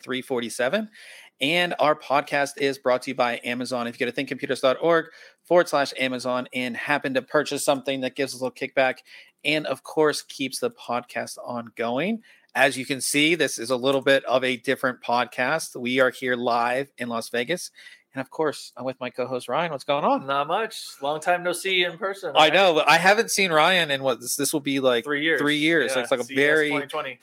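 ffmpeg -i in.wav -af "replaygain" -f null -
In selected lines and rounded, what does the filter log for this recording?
track_gain = +2.0 dB
track_peak = 0.545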